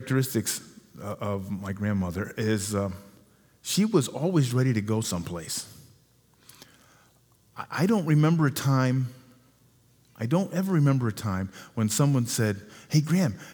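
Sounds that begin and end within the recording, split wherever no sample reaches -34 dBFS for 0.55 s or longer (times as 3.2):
3.66–5.64
6.49–6.63
7.58–9.08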